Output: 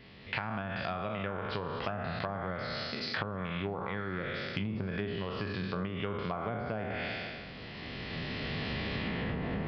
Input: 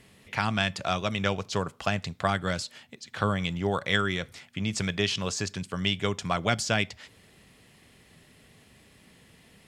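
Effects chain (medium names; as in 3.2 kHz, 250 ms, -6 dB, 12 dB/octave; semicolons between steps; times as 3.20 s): spectral sustain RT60 1.15 s; recorder AGC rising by 12 dB/s; low-pass that closes with the level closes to 1 kHz, closed at -19 dBFS; resampled via 11.025 kHz; compression, threshold -32 dBFS, peak gain reduction 14.5 dB; on a send: repeats whose band climbs or falls 187 ms, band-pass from 170 Hz, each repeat 0.7 oct, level -11.5 dB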